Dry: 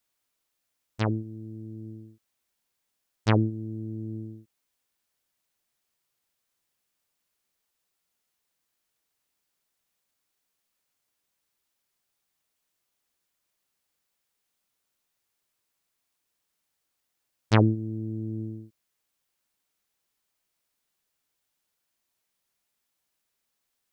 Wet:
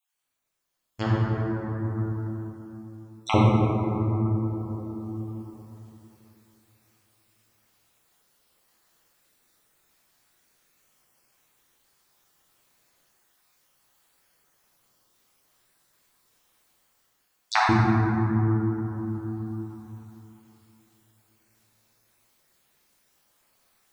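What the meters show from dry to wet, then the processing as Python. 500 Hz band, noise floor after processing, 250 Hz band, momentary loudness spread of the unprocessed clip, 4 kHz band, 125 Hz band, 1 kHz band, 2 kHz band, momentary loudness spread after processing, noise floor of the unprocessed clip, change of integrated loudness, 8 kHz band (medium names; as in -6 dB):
+4.0 dB, -71 dBFS, +5.0 dB, 20 LU, +4.5 dB, +5.0 dB, +10.0 dB, +7.0 dB, 21 LU, -80 dBFS, +2.0 dB, no reading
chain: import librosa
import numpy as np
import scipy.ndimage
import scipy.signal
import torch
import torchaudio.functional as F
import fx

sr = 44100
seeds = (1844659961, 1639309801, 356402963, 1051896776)

y = fx.spec_dropout(x, sr, seeds[0], share_pct=37)
y = fx.rev_plate(y, sr, seeds[1], rt60_s=3.3, hf_ratio=0.35, predelay_ms=0, drr_db=-6.0)
y = fx.rider(y, sr, range_db=10, speed_s=2.0)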